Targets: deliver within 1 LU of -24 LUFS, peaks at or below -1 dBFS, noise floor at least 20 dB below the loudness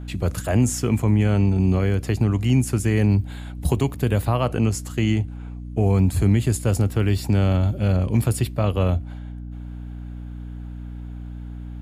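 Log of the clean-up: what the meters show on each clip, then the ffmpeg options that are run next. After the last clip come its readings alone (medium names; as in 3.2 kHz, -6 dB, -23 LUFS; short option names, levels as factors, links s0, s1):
hum 60 Hz; highest harmonic 300 Hz; hum level -32 dBFS; loudness -21.5 LUFS; peak level -8.0 dBFS; loudness target -24.0 LUFS
-> -af "bandreject=f=60:t=h:w=6,bandreject=f=120:t=h:w=6,bandreject=f=180:t=h:w=6,bandreject=f=240:t=h:w=6,bandreject=f=300:t=h:w=6"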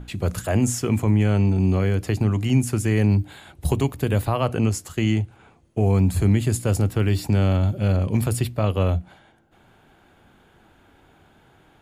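hum not found; loudness -22.0 LUFS; peak level -8.0 dBFS; loudness target -24.0 LUFS
-> -af "volume=0.794"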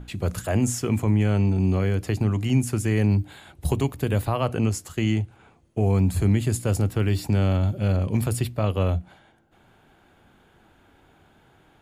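loudness -24.0 LUFS; peak level -10.0 dBFS; noise floor -58 dBFS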